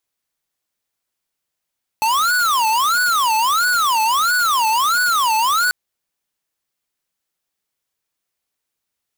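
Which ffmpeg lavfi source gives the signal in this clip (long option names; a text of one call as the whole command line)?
ffmpeg -f lavfi -i "aevalsrc='0.15*(2*lt(mod((1175.5*t-304.5/(2*PI*1.5)*sin(2*PI*1.5*t)),1),0.5)-1)':duration=3.69:sample_rate=44100" out.wav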